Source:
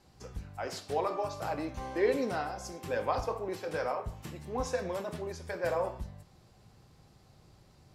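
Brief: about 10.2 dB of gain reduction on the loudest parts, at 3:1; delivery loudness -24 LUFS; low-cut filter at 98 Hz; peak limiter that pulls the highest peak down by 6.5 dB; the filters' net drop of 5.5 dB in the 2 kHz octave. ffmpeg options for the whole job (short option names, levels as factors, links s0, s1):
-af "highpass=98,equalizer=f=2000:t=o:g=-7.5,acompressor=threshold=0.0141:ratio=3,volume=8.91,alimiter=limit=0.2:level=0:latency=1"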